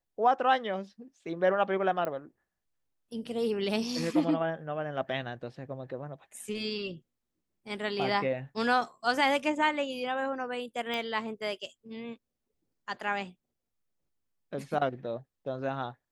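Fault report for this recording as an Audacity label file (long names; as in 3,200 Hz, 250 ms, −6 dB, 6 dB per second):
2.050000	2.050000	click −21 dBFS
10.940000	10.940000	click −21 dBFS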